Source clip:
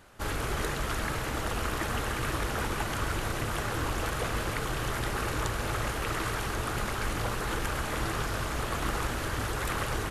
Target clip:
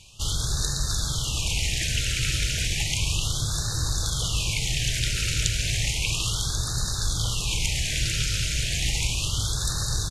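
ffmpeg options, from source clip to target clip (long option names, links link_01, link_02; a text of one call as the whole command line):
ffmpeg -i in.wav -af "firequalizer=gain_entry='entry(150,0);entry(230,-14);entry(510,-16);entry(1600,-12);entry(2400,5);entry(6500,9);entry(14000,-10)':delay=0.05:min_phase=1,afftfilt=real='re*(1-between(b*sr/1024,900*pow(2600/900,0.5+0.5*sin(2*PI*0.33*pts/sr))/1.41,900*pow(2600/900,0.5+0.5*sin(2*PI*0.33*pts/sr))*1.41))':imag='im*(1-between(b*sr/1024,900*pow(2600/900,0.5+0.5*sin(2*PI*0.33*pts/sr))/1.41,900*pow(2600/900,0.5+0.5*sin(2*PI*0.33*pts/sr))*1.41))':win_size=1024:overlap=0.75,volume=7dB" out.wav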